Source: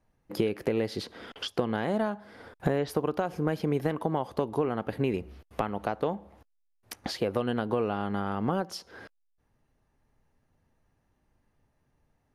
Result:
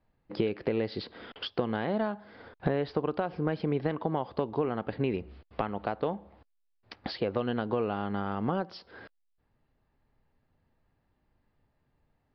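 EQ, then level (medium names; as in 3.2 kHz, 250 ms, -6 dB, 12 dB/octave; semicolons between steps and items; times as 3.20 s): steep low-pass 4.9 kHz 72 dB/octave; -1.5 dB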